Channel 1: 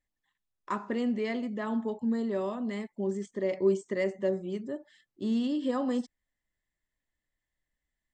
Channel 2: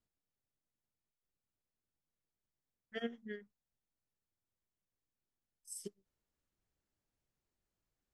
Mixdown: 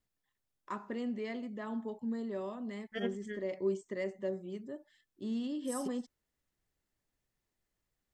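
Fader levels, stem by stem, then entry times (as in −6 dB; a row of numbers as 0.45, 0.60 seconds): −7.5, +2.5 decibels; 0.00, 0.00 seconds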